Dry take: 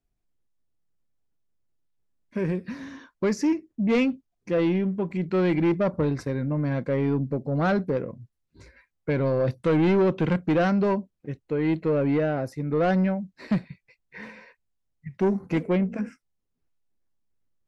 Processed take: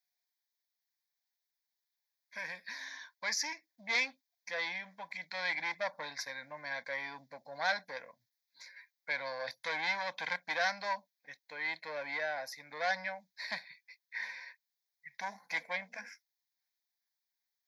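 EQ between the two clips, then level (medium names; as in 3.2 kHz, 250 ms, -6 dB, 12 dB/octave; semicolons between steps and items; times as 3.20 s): high-pass 1.1 kHz 12 dB/octave; treble shelf 2 kHz +9.5 dB; static phaser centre 1.9 kHz, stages 8; 0.0 dB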